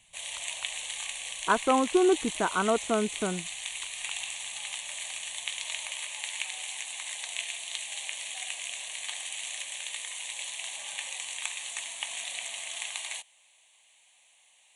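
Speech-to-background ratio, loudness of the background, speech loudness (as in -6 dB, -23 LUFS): 7.5 dB, -34.5 LUFS, -27.0 LUFS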